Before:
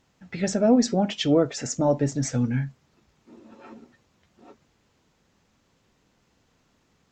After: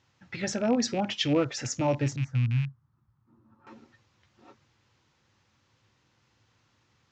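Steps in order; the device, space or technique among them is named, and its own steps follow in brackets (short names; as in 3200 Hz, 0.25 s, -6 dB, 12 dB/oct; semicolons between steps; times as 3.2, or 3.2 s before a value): 2.16–3.67 EQ curve 160 Hz 0 dB, 480 Hz -19 dB, 1200 Hz -7 dB, 2400 Hz -26 dB; car door speaker with a rattle (rattling part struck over -28 dBFS, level -30 dBFS; speaker cabinet 84–6500 Hz, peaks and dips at 110 Hz +8 dB, 180 Hz -10 dB, 260 Hz -7 dB, 430 Hz -8 dB, 660 Hz -8 dB)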